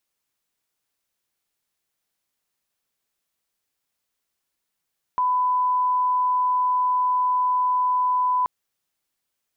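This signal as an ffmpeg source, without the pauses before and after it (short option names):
-f lavfi -i "sine=f=1000:d=3.28:r=44100,volume=0.06dB"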